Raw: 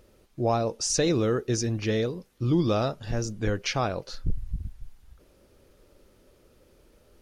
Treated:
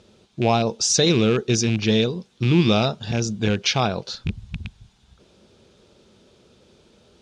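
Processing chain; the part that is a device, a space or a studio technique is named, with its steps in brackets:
car door speaker with a rattle (loose part that buzzes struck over −25 dBFS, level −26 dBFS; loudspeaker in its box 99–7,800 Hz, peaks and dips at 210 Hz +5 dB, 290 Hz −7 dB, 550 Hz −6 dB, 1,200 Hz −4 dB, 1,900 Hz −6 dB, 3,600 Hz +7 dB)
level +7.5 dB

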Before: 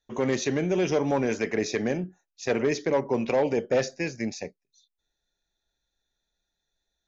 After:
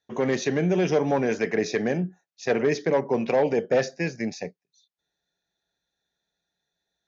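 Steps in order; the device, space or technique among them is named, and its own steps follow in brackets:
car door speaker (loudspeaker in its box 93–6,600 Hz, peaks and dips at 170 Hz +7 dB, 450 Hz +3 dB, 720 Hz +4 dB, 1,700 Hz +4 dB)

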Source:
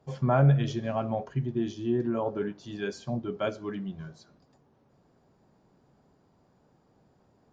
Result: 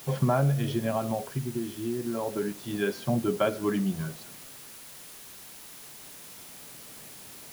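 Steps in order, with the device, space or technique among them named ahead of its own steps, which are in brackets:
medium wave at night (band-pass filter 100–3,900 Hz; downward compressor, threshold −30 dBFS, peak gain reduction 12.5 dB; amplitude tremolo 0.28 Hz, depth 56%; steady tone 10,000 Hz −63 dBFS; white noise bed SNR 16 dB)
level +9 dB

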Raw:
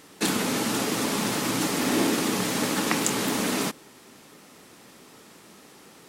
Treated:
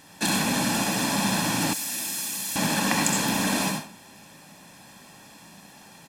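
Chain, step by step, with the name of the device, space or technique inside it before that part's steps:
microphone above a desk (comb filter 1.2 ms, depth 66%; convolution reverb RT60 0.40 s, pre-delay 61 ms, DRR 1.5 dB)
0:01.73–0:02.56: first-order pre-emphasis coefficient 0.9
level −1.5 dB

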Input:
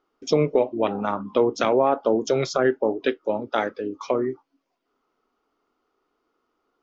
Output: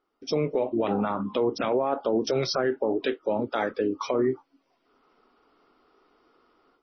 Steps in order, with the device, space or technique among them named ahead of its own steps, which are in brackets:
low-bitrate web radio (automatic gain control gain up to 14 dB; brickwall limiter −12 dBFS, peak gain reduction 10.5 dB; level −3.5 dB; MP3 24 kbit/s 24,000 Hz)

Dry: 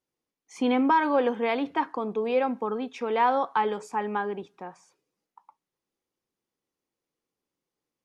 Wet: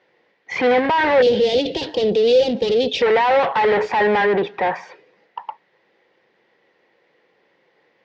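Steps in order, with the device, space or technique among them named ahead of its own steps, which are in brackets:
overdrive pedal into a guitar cabinet (mid-hump overdrive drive 36 dB, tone 1,300 Hz, clips at −12 dBFS; loudspeaker in its box 78–4,400 Hz, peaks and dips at 270 Hz −8 dB, 510 Hz +4 dB, 1,200 Hz −8 dB, 1,900 Hz +10 dB)
0:01.22–0:03.02: drawn EQ curve 520 Hz 0 dB, 1,100 Hz −23 dB, 2,000 Hz −20 dB, 2,900 Hz +5 dB, 4,900 Hz +13 dB
level +3 dB

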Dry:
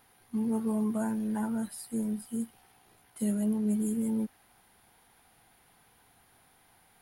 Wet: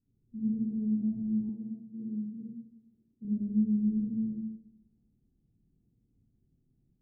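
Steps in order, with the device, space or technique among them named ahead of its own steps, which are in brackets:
next room (low-pass filter 260 Hz 24 dB per octave; convolution reverb RT60 0.90 s, pre-delay 49 ms, DRR −8.5 dB)
0:01.49–0:03.25: high-pass filter 230 Hz 6 dB per octave
level −8.5 dB

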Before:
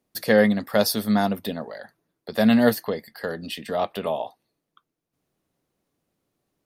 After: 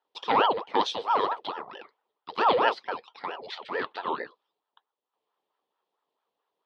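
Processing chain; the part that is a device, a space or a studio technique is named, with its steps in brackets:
voice changer toy (ring modulator whose carrier an LFO sweeps 710 Hz, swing 65%, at 4.5 Hz; loudspeaker in its box 430–4,100 Hz, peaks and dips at 430 Hz +5 dB, 630 Hz −5 dB, 1,000 Hz +3 dB, 1,500 Hz −8 dB, 2,200 Hz −6 dB, 3,300 Hz +4 dB)

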